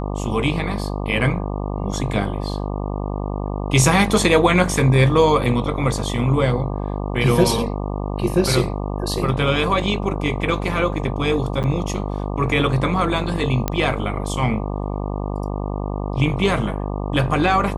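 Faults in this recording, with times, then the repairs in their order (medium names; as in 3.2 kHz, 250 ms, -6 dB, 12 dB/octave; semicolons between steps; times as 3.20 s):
buzz 50 Hz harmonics 24 -25 dBFS
11.63–11.64 s: dropout 8.6 ms
13.68 s: pop -6 dBFS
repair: de-click; de-hum 50 Hz, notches 24; interpolate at 11.63 s, 8.6 ms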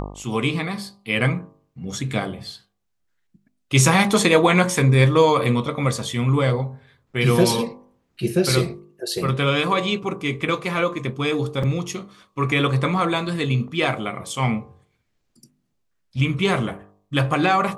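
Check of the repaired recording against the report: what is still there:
nothing left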